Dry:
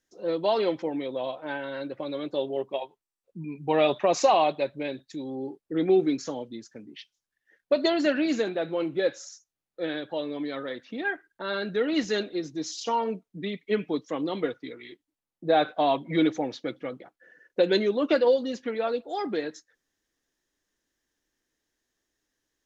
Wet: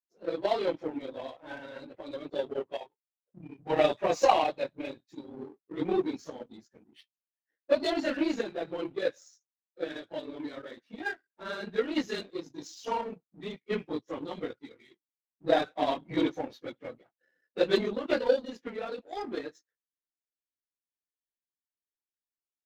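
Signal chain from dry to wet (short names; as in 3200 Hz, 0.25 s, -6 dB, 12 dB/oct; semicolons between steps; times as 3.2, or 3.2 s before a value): phase scrambler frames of 50 ms; power-law curve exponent 1.4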